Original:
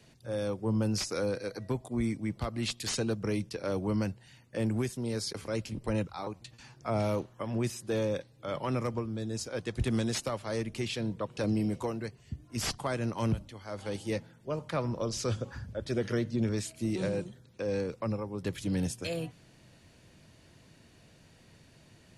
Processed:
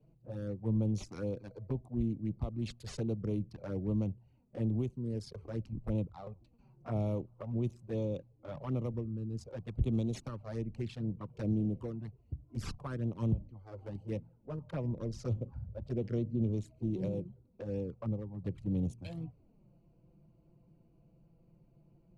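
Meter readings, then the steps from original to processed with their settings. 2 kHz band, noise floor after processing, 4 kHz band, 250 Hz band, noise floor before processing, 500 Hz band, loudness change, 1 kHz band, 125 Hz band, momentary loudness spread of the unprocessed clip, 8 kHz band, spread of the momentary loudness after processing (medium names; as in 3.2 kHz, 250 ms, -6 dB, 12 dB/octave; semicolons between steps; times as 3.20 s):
-15.5 dB, -66 dBFS, -16.5 dB, -3.0 dB, -59 dBFS, -7.5 dB, -3.5 dB, -12.0 dB, -0.5 dB, 7 LU, under -15 dB, 11 LU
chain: local Wiener filter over 25 samples; tilt EQ -2 dB/octave; touch-sensitive flanger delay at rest 6.9 ms, full sweep at -24 dBFS; trim -6.5 dB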